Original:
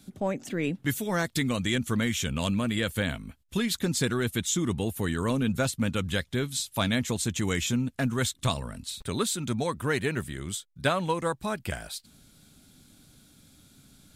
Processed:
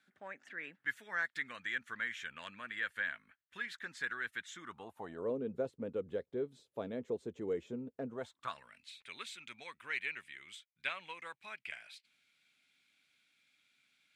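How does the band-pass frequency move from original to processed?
band-pass, Q 4.3
4.59 s 1700 Hz
5.32 s 450 Hz
8.08 s 450 Hz
8.66 s 2300 Hz

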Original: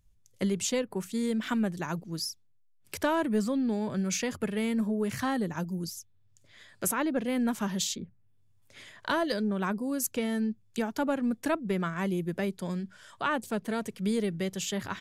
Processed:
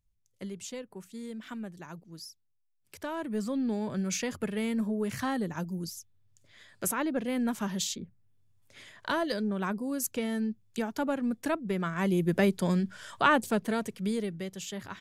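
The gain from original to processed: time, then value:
2.96 s -11 dB
3.61 s -1.5 dB
11.79 s -1.5 dB
12.35 s +6.5 dB
13.26 s +6.5 dB
14.49 s -6 dB

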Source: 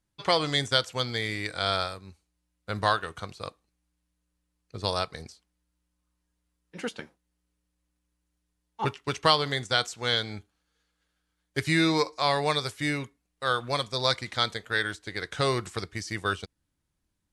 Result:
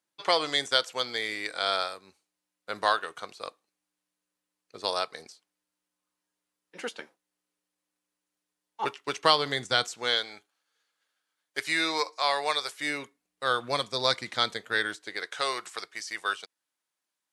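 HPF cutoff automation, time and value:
8.93 s 380 Hz
9.8 s 140 Hz
10.3 s 590 Hz
12.67 s 590 Hz
13.45 s 190 Hz
14.79 s 190 Hz
15.43 s 690 Hz

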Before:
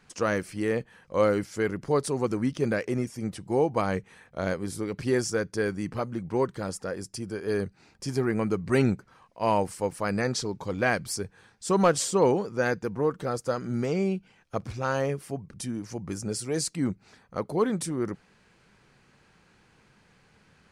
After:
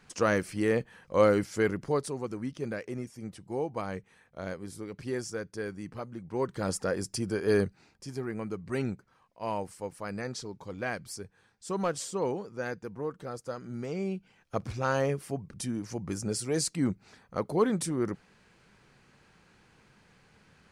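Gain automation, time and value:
1.68 s +0.5 dB
2.23 s -8.5 dB
6.27 s -8.5 dB
6.71 s +3 dB
7.6 s +3 dB
8.05 s -9 dB
13.78 s -9 dB
14.63 s -0.5 dB

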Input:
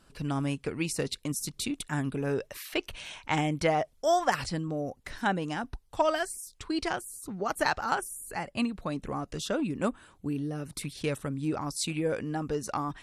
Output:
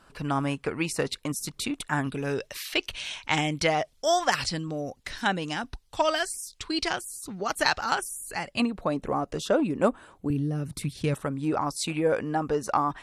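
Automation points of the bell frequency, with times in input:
bell +9 dB 2.3 oct
1100 Hz
from 2.07 s 4200 Hz
from 8.6 s 640 Hz
from 10.3 s 110 Hz
from 11.14 s 880 Hz

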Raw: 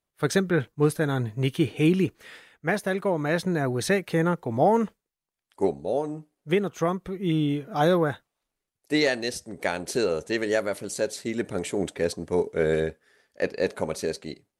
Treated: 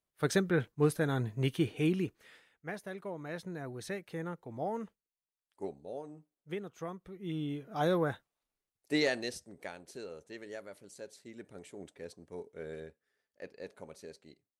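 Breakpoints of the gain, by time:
1.49 s -6 dB
2.78 s -16 dB
6.98 s -16 dB
8.07 s -7 dB
9.19 s -7 dB
9.84 s -20 dB

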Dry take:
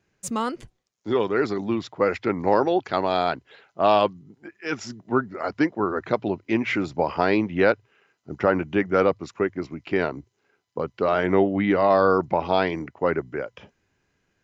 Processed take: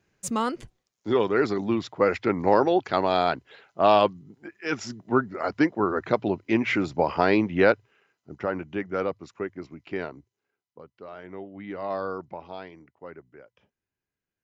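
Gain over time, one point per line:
7.72 s 0 dB
8.39 s -8 dB
9.97 s -8 dB
10.9 s -20 dB
11.46 s -20 dB
11.93 s -11.5 dB
12.73 s -19.5 dB

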